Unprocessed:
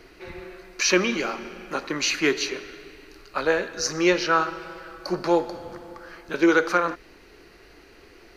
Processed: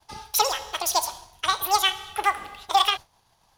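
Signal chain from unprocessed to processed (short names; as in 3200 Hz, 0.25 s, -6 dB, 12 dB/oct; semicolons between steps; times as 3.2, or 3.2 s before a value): expander -40 dBFS; speed mistake 33 rpm record played at 78 rpm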